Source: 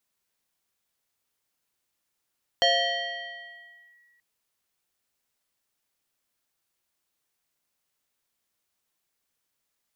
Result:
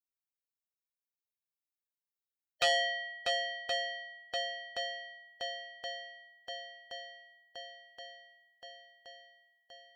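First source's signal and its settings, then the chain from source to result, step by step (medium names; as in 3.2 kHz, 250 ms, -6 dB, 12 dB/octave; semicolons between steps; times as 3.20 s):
FM tone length 1.58 s, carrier 1.92 kHz, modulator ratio 0.64, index 1.9, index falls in 1.36 s linear, decay 2.02 s, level -16.5 dB
expander on every frequency bin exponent 2; on a send: shuffle delay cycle 1073 ms, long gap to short 1.5:1, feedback 63%, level -7 dB; on the sum: transformer saturation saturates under 1.8 kHz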